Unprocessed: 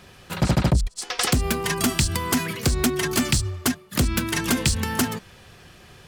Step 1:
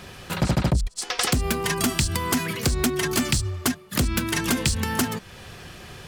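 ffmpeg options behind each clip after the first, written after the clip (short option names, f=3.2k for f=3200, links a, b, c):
-af "acompressor=threshold=-40dB:ratio=1.5,volume=6.5dB"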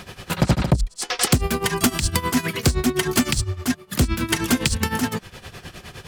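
-af "tremolo=f=9.7:d=0.8,volume=6dB"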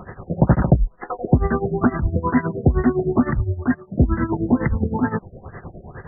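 -af "afftfilt=real='re*lt(b*sr/1024,700*pow(2100/700,0.5+0.5*sin(2*PI*2.2*pts/sr)))':imag='im*lt(b*sr/1024,700*pow(2100/700,0.5+0.5*sin(2*PI*2.2*pts/sr)))':win_size=1024:overlap=0.75,volume=3.5dB"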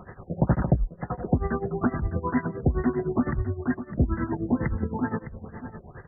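-af "aecho=1:1:608:0.237,volume=-7dB"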